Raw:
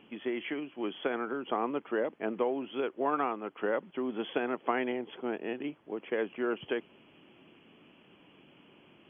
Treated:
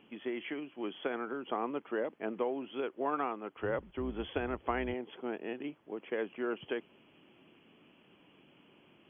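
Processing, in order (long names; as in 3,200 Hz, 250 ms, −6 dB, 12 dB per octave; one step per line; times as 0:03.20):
0:03.55–0:04.94: sub-octave generator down 2 octaves, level −4 dB
level −3.5 dB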